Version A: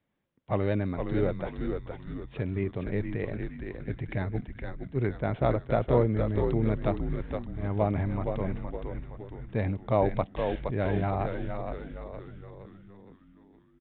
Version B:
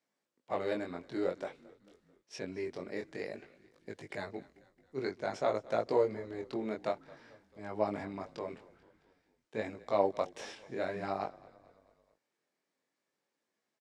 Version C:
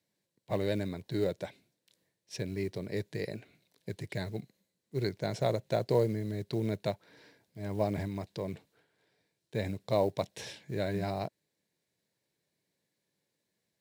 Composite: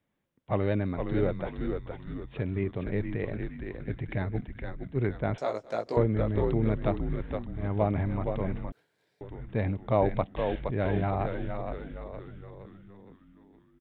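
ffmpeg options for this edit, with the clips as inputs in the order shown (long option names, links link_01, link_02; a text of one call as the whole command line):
ffmpeg -i take0.wav -i take1.wav -i take2.wav -filter_complex "[0:a]asplit=3[link_01][link_02][link_03];[link_01]atrim=end=5.382[link_04];[1:a]atrim=start=5.378:end=5.972[link_05];[link_02]atrim=start=5.968:end=8.722[link_06];[2:a]atrim=start=8.718:end=9.212[link_07];[link_03]atrim=start=9.208[link_08];[link_04][link_05]acrossfade=duration=0.004:curve1=hsin:curve2=hsin[link_09];[link_09][link_06]acrossfade=duration=0.004:curve1=hsin:curve2=hsin[link_10];[link_10][link_07]acrossfade=duration=0.004:curve1=hsin:curve2=hsin[link_11];[link_11][link_08]acrossfade=duration=0.004:curve1=hsin:curve2=hsin" out.wav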